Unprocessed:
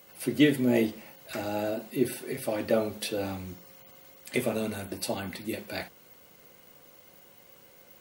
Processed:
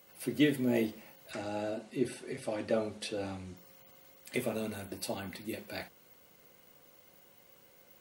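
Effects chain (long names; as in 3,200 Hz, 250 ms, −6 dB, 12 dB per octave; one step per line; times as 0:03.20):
0:01.31–0:03.57: Butterworth low-pass 10,000 Hz 36 dB per octave
level −5.5 dB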